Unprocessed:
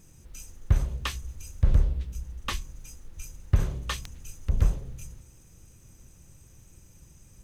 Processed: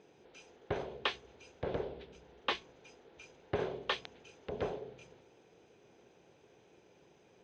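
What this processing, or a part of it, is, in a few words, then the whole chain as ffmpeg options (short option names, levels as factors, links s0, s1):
phone earpiece: -af "highpass=410,equalizer=f=420:t=q:w=4:g=10,equalizer=f=730:t=q:w=4:g=5,equalizer=f=1200:t=q:w=4:g=-8,equalizer=f=1900:t=q:w=4:g=-5,equalizer=f=2700:t=q:w=4:g=-4,lowpass=f=3500:w=0.5412,lowpass=f=3500:w=1.3066,volume=1.5"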